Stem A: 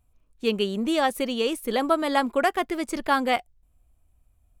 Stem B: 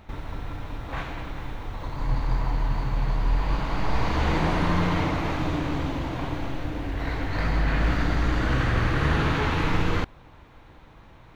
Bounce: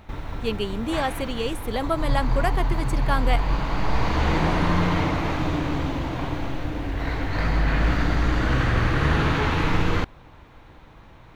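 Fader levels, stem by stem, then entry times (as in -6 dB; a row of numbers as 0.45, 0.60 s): -3.0, +2.0 dB; 0.00, 0.00 s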